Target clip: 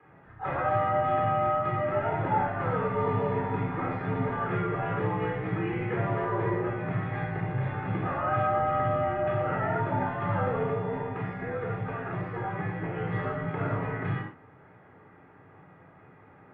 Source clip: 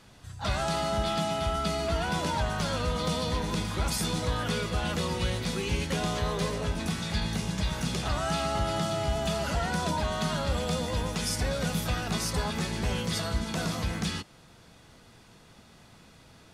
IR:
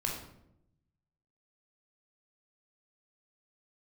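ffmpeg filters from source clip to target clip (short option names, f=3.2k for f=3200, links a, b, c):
-filter_complex "[0:a]asettb=1/sr,asplit=3[a][b][c];[a]atrim=end=10.664[d];[b]atrim=start=10.66:end=12.96,asetpts=PTS-STARTPTS,afade=t=in:d=0.004:c=qsin,afade=t=out:st=2.296:d=0.004:c=qsin,acompressor=threshold=-29dB:ratio=6[e];[c]atrim=start=12.956[f];[d][e]acrossfade=d=0.004:c1=hsin:c2=qsin[g];[g][f]acrossfade=d=0.004:c1=qsin:c2=hsin,highpass=f=200:t=q:w=0.5412,highpass=f=200:t=q:w=1.307,lowpass=f=2.1k:t=q:w=0.5176,lowpass=f=2.1k:t=q:w=0.7071,lowpass=f=2.1k:t=q:w=1.932,afreqshift=-55[h];[1:a]atrim=start_sample=2205,atrim=end_sample=4410,asetrate=34398,aresample=44100[i];[h][i]afir=irnorm=-1:irlink=0,volume=-1.5dB"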